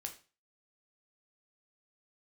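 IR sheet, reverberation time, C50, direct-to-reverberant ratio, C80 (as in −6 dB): 0.35 s, 12.0 dB, 3.5 dB, 17.0 dB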